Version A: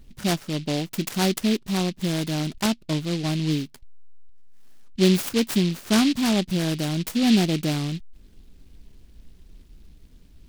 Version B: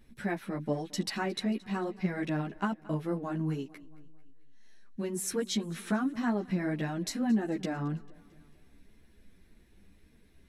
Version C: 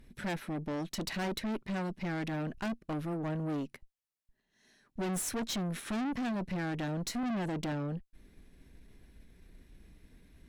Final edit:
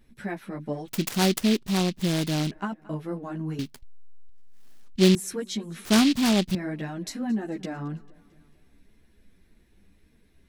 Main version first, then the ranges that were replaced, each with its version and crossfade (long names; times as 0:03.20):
B
0:00.88–0:02.51: punch in from A
0:03.59–0:05.15: punch in from A
0:05.85–0:06.55: punch in from A
not used: C